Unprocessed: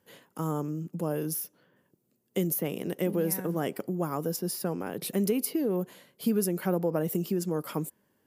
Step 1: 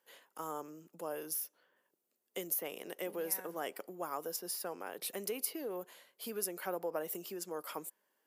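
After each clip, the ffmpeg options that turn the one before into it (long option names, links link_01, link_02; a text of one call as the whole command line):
ffmpeg -i in.wav -af "highpass=590,volume=-4dB" out.wav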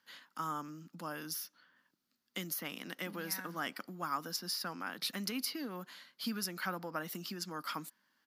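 ffmpeg -i in.wav -af "firequalizer=gain_entry='entry(260,0);entry(400,-20);entry(1300,-1);entry(2600,-6);entry(4500,2);entry(7800,-14)':delay=0.05:min_phase=1,volume=9.5dB" out.wav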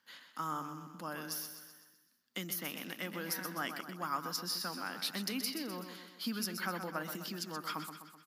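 ffmpeg -i in.wav -af "aecho=1:1:127|254|381|508|635|762:0.376|0.199|0.106|0.056|0.0297|0.0157" out.wav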